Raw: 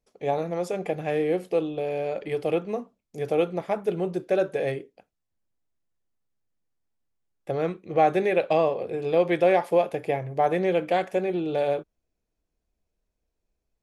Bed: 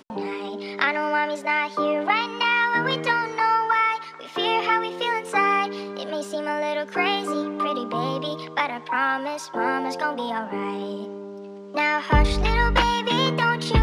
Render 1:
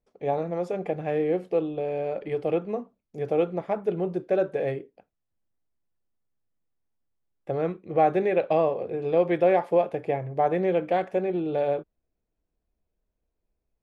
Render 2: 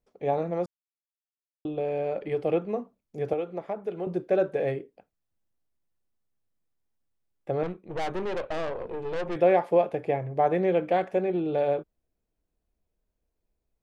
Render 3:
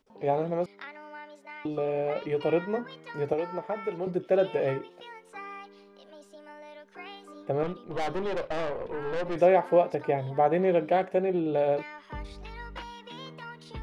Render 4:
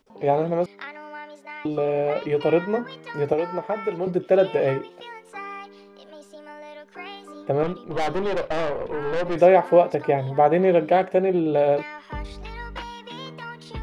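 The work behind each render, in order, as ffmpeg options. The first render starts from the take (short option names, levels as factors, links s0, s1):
-af "lowpass=f=1600:p=1"
-filter_complex "[0:a]asettb=1/sr,asplit=3[s0][s1][s2];[s0]atrim=end=3.334[s3];[s1]atrim=start=3.33:end=4.07,asetpts=PTS-STARTPTS,afade=t=in:d=0.004:c=qsin,afade=t=out:st=0.736:d=0.004:c=qsin,acrossover=split=310|730[s4][s5][s6];[s4]acompressor=threshold=0.00562:ratio=4[s7];[s5]acompressor=threshold=0.0282:ratio=4[s8];[s6]acompressor=threshold=0.00891:ratio=4[s9];[s7][s8][s9]amix=inputs=3:normalize=0[s10];[s2]atrim=start=4.066[s11];[s3][s10]acrossfade=d=0.004:c1=hsin:c2=qsin[s12];[s12][s11]acrossfade=d=0.004:c1=qsin:c2=hsin,asettb=1/sr,asplit=3[s13][s14][s15];[s13]atrim=end=7.634[s16];[s14]atrim=start=7.63:end=9.36,asetpts=PTS-STARTPTS,afade=t=in:d=0.004:c=qsin,afade=t=out:st=1.726:d=0.004:c=qsin,aeval=exprs='(tanh(25.1*val(0)+0.65)-tanh(0.65))/25.1':c=same[s17];[s15]atrim=start=9.356[s18];[s16][s17]acrossfade=d=0.004:c1=hsin:c2=qsin[s19];[s19][s18]acrossfade=d=0.004:c1=qsin:c2=hsin,asplit=3[s20][s21][s22];[s20]atrim=end=0.66,asetpts=PTS-STARTPTS,afade=t=out:st=0.656:d=0.004:c=hsin[s23];[s21]atrim=start=0.66:end=1.65,asetpts=PTS-STARTPTS,volume=0[s24];[s22]atrim=start=1.65,asetpts=PTS-STARTPTS,afade=t=in:d=0.004:c=hsin[s25];[s23][s24][s25]concat=n=3:v=0:a=1"
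-filter_complex "[1:a]volume=0.0841[s0];[0:a][s0]amix=inputs=2:normalize=0"
-af "volume=2"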